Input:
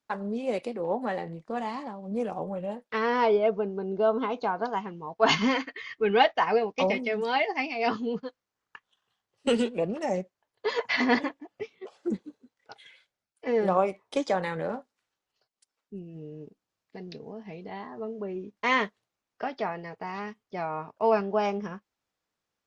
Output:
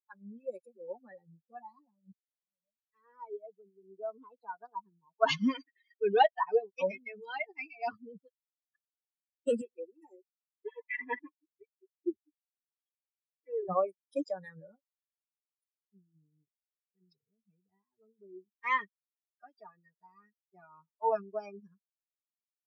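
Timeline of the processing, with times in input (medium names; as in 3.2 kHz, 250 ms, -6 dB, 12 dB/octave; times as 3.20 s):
2.12–4.91 s: fade in
9.61–13.69 s: static phaser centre 940 Hz, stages 8
whole clip: expander on every frequency bin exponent 3; high-pass 180 Hz; treble shelf 2.7 kHz -9 dB; trim +1.5 dB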